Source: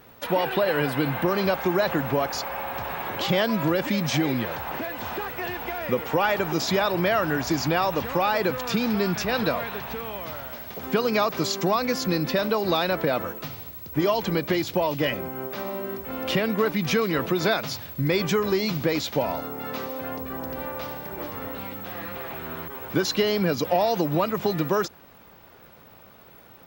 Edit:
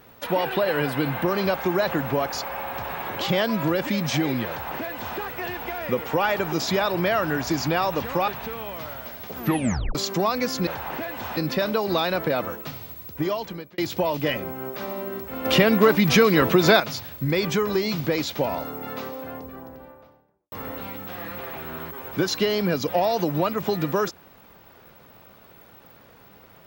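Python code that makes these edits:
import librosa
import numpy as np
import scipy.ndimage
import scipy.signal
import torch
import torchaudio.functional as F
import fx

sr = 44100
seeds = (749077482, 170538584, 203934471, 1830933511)

y = fx.studio_fade_out(x, sr, start_s=19.47, length_s=1.82)
y = fx.edit(y, sr, fx.duplicate(start_s=4.48, length_s=0.7, to_s=12.14),
    fx.cut(start_s=8.28, length_s=1.47),
    fx.tape_stop(start_s=10.84, length_s=0.58),
    fx.fade_out_span(start_s=13.83, length_s=0.72),
    fx.clip_gain(start_s=16.22, length_s=1.35, db=6.5), tone=tone)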